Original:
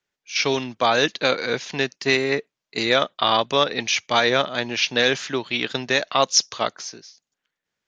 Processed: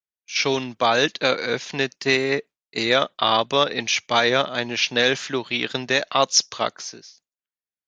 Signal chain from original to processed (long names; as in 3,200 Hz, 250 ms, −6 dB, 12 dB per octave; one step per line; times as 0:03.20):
noise gate with hold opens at −41 dBFS